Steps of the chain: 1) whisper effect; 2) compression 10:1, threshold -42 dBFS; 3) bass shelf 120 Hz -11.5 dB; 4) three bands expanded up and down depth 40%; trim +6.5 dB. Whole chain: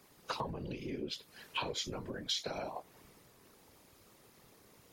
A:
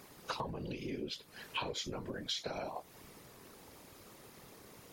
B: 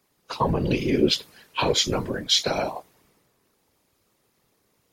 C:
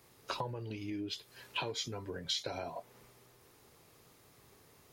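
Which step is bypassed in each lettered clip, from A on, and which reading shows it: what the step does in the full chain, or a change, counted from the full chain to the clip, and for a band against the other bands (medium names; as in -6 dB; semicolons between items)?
4, 8 kHz band -2.0 dB; 2, mean gain reduction 11.5 dB; 1, 125 Hz band +2.0 dB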